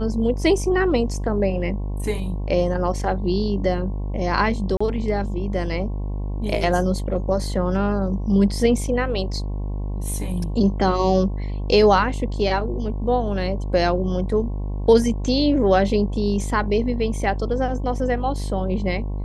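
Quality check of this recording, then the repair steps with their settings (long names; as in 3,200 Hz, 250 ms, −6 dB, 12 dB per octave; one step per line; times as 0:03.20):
mains buzz 50 Hz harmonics 22 −26 dBFS
0:04.77–0:04.80: drop-out 35 ms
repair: hum removal 50 Hz, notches 22
repair the gap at 0:04.77, 35 ms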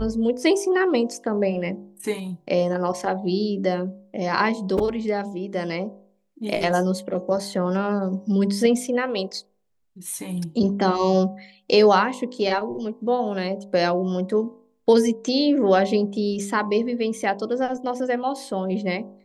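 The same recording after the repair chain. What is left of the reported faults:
none of them is left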